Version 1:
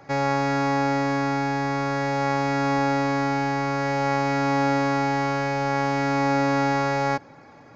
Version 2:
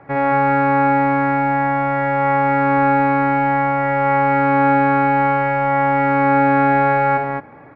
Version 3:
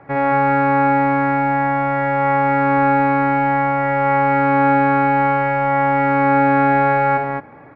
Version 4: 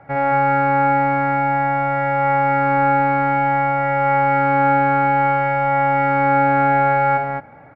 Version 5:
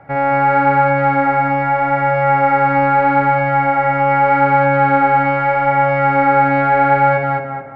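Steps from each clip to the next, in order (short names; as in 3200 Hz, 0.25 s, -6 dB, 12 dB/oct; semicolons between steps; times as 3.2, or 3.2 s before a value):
LPF 2300 Hz 24 dB/oct; on a send: loudspeakers at several distances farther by 21 m -5 dB, 77 m -3 dB; on the sum: gain +3.5 dB
nothing audible
comb 1.4 ms, depth 49%; gain -2.5 dB
tape echo 0.213 s, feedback 40%, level -3 dB, low-pass 2000 Hz; gain +2.5 dB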